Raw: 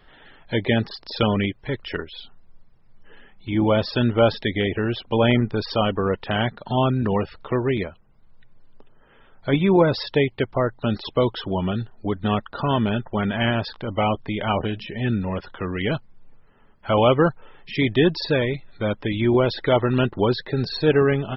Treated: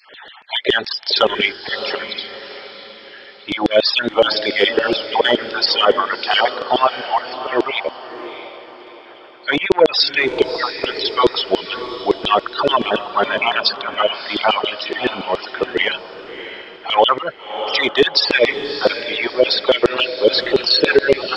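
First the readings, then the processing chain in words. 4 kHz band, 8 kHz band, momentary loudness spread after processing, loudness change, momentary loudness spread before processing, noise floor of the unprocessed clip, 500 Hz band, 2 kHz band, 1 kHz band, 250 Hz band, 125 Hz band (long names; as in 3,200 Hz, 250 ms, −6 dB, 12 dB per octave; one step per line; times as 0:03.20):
+13.0 dB, can't be measured, 17 LU, +5.5 dB, 10 LU, −53 dBFS, +5.0 dB, +9.5 dB, +8.0 dB, −3.0 dB, −15.5 dB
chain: time-frequency cells dropped at random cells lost 26%
parametric band 4,800 Hz +8 dB 0.62 octaves
in parallel at −7.5 dB: soft clipping −17 dBFS, distortion −12 dB
on the sum: auto-filter high-pass saw down 7.1 Hz 350–4,000 Hz
downsampling to 22,050 Hz
on a send: feedback delay with all-pass diffusion 648 ms, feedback 42%, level −12 dB
on the sum: boost into a limiter +7 dB
level −1 dB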